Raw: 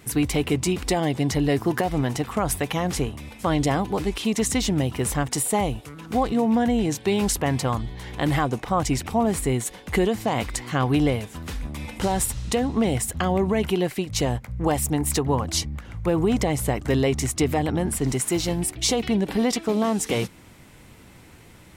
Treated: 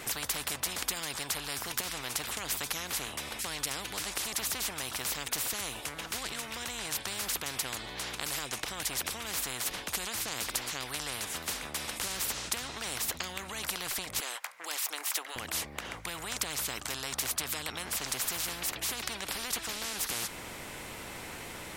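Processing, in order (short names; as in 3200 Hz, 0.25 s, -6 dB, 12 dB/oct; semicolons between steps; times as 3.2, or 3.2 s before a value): 14.2–15.36 HPF 880 Hz 24 dB/oct; spectral compressor 10:1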